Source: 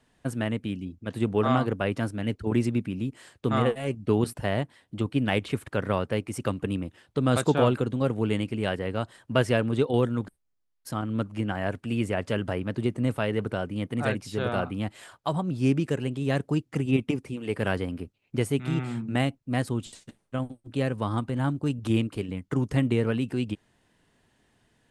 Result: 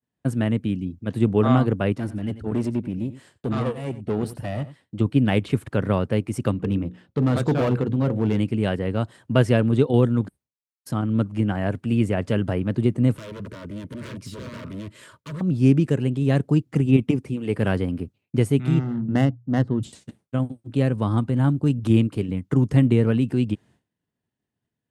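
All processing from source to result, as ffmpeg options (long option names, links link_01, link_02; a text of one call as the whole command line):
ffmpeg -i in.wav -filter_complex "[0:a]asettb=1/sr,asplit=3[link_01][link_02][link_03];[link_01]atrim=end=1.924[link_04];[link_02]atrim=start=1.92:end=5,asetpts=PTS-STARTPTS,afade=type=in:duration=0.004:curve=qsin,afade=type=out:start_time=3.076:duration=0.004:curve=qsin,aeval=exprs='(tanh(15.8*val(0)+0.7)-tanh(0.7))/15.8':channel_layout=same,aecho=1:1:90:0.188,atrim=end_sample=135828[link_05];[link_03]atrim=start=4.996[link_06];[link_04][link_05]acrossfade=duration=0.004:curve1=hsin:curve2=qsin[link_07];[link_07][link_06]acrossfade=duration=0.004:curve1=qsin:curve2=hsin,asettb=1/sr,asplit=3[link_08][link_09][link_10];[link_08]atrim=end=6.514[link_11];[link_09]atrim=start=6.51:end=8.38,asetpts=PTS-STARTPTS,afade=type=in:duration=0.004:curve=qsin,afade=type=out:start_time=1.866:duration=0.004:curve=qsin,equalizer=frequency=10000:width_type=o:width=1.3:gain=-11,bandreject=frequency=60:width_type=h:width=6,bandreject=frequency=120:width_type=h:width=6,bandreject=frequency=180:width_type=h:width=6,bandreject=frequency=240:width_type=h:width=6,bandreject=frequency=300:width_type=h:width=6,bandreject=frequency=360:width_type=h:width=6,bandreject=frequency=420:width_type=h:width=6,bandreject=frequency=480:width_type=h:width=6,bandreject=frequency=540:width_type=h:width=6,asoftclip=type=hard:threshold=-21.5dB[link_12];[link_10]atrim=start=8.376[link_13];[link_11][link_12]acrossfade=duration=0.004:curve1=hsin:curve2=qsin[link_14];[link_14][link_13]acrossfade=duration=0.004:curve1=qsin:curve2=hsin,asettb=1/sr,asplit=3[link_15][link_16][link_17];[link_15]atrim=end=13.164[link_18];[link_16]atrim=start=13.16:end=15.41,asetpts=PTS-STARTPTS,afade=type=in:duration=0.004:curve=qsin,afade=type=out:start_time=2.246:duration=0.004:curve=qsin,acompressor=threshold=-33dB:ratio=2.5:attack=3.2:release=140:knee=1:detection=peak,aeval=exprs='0.02*(abs(mod(val(0)/0.02+3,4)-2)-1)':channel_layout=same,asuperstop=centerf=770:order=12:qfactor=3.2[link_19];[link_17]atrim=start=15.406[link_20];[link_18][link_19]acrossfade=duration=0.004:curve1=hsin:curve2=qsin[link_21];[link_21][link_20]acrossfade=duration=0.004:curve1=qsin:curve2=hsin,asettb=1/sr,asplit=3[link_22][link_23][link_24];[link_22]atrim=end=18.794[link_25];[link_23]atrim=start=18.79:end=19.83,asetpts=PTS-STARTPTS,afade=type=in:duration=0.004:curve=qsin,afade=type=out:start_time=1.036:duration=0.004:curve=qsin,bandreject=frequency=60:width_type=h:width=6,bandreject=frequency=120:width_type=h:width=6,adynamicsmooth=sensitivity=3.5:basefreq=1000,asuperstop=centerf=2400:order=4:qfactor=4.8[link_26];[link_24]atrim=start=19.826[link_27];[link_25][link_26]acrossfade=duration=0.004:curve1=hsin:curve2=qsin[link_28];[link_28][link_27]acrossfade=duration=0.004:curve1=qsin:curve2=hsin,agate=range=-33dB:threshold=-52dB:ratio=3:detection=peak,highpass=90,lowshelf=frequency=340:gain=10.5" out.wav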